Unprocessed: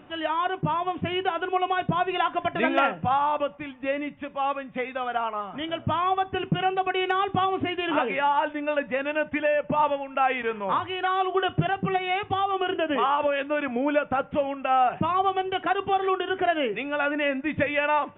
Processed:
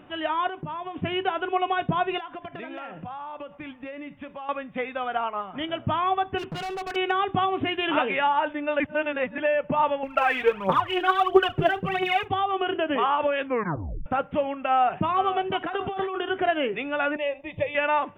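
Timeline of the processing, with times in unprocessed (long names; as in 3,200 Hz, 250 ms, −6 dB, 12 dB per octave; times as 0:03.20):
0:00.48–0:00.96: downward compressor 4 to 1, threshold −31 dBFS
0:02.18–0:04.49: downward compressor 12 to 1, threshold −33 dBFS
0:05.21–0:05.70: transient designer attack +3 dB, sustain −3 dB
0:06.38–0:06.96: gain into a clipping stage and back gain 30 dB
0:07.57–0:08.27: high-shelf EQ 3,500 Hz +9 dB
0:08.80–0:09.38: reverse
0:10.03–0:12.28: phase shifter 1.5 Hz, delay 3.3 ms, feedback 71%
0:13.44: tape stop 0.62 s
0:14.67–0:15.09: delay throw 490 ms, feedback 30%, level −10 dB
0:15.61–0:16.22: compressor whose output falls as the input rises −29 dBFS
0:17.16–0:17.75: phaser with its sweep stopped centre 610 Hz, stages 4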